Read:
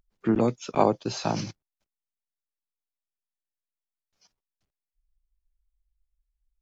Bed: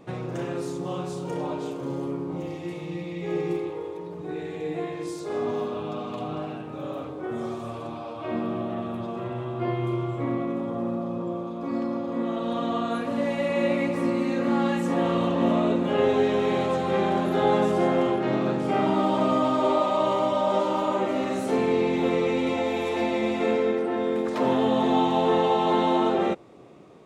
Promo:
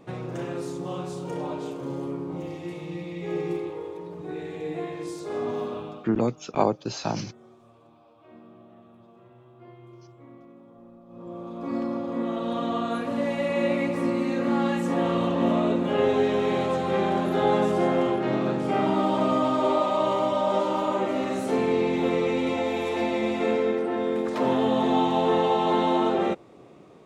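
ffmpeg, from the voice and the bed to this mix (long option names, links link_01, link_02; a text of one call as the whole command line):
ffmpeg -i stem1.wav -i stem2.wav -filter_complex "[0:a]adelay=5800,volume=-1dB[link_01];[1:a]volume=19dB,afade=type=out:start_time=5.73:duration=0.37:silence=0.105925,afade=type=in:start_time=11.07:duration=0.65:silence=0.0944061[link_02];[link_01][link_02]amix=inputs=2:normalize=0" out.wav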